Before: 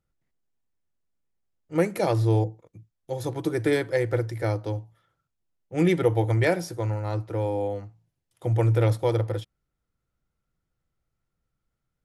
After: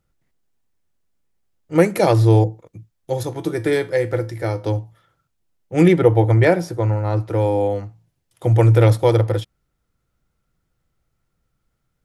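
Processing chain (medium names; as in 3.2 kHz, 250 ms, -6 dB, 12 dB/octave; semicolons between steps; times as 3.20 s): 3.23–4.64 s: feedback comb 85 Hz, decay 0.27 s, harmonics all, mix 60%; 5.88–7.17 s: treble shelf 2.7 kHz -9 dB; trim +8.5 dB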